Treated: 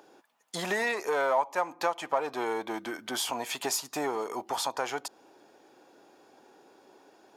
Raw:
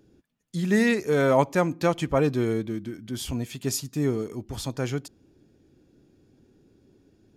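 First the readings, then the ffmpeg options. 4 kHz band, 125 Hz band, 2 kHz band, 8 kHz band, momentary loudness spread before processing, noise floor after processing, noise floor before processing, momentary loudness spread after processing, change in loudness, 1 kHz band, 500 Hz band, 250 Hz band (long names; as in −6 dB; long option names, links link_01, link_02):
+1.5 dB, −22.5 dB, −1.5 dB, +0.5 dB, 13 LU, −61 dBFS, −63 dBFS, 9 LU, −5.0 dB, +1.5 dB, −6.0 dB, −14.0 dB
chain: -filter_complex "[0:a]asplit=2[link_01][link_02];[link_02]volume=26.5dB,asoftclip=hard,volume=-26.5dB,volume=-4dB[link_03];[link_01][link_03]amix=inputs=2:normalize=0,highpass=600,equalizer=frequency=880:width=1.2:gain=14,acompressor=threshold=-34dB:ratio=3,volume=4dB"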